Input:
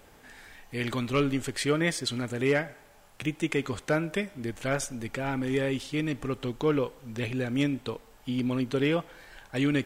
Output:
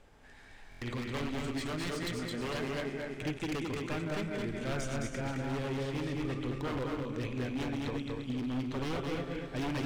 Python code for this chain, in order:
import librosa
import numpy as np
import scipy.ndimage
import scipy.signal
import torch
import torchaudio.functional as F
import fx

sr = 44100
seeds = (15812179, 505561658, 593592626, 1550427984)

p1 = fx.reverse_delay_fb(x, sr, ms=122, feedback_pct=68, wet_db=-7)
p2 = fx.air_absorb(p1, sr, metres=54.0)
p3 = 10.0 ** (-23.5 / 20.0) * (np.abs((p2 / 10.0 ** (-23.5 / 20.0) + 3.0) % 4.0 - 2.0) - 1.0)
p4 = fx.low_shelf(p3, sr, hz=68.0, db=9.0)
p5 = p4 + 10.0 ** (-22.0 / 20.0) * np.pad(p4, (int(342 * sr / 1000.0), 0))[:len(p4)]
p6 = fx.rider(p5, sr, range_db=10, speed_s=0.5)
p7 = p6 + fx.echo_single(p6, sr, ms=215, db=-3.5, dry=0)
p8 = fx.buffer_glitch(p7, sr, at_s=(0.7,), block=1024, repeats=4)
y = p8 * librosa.db_to_amplitude(-7.5)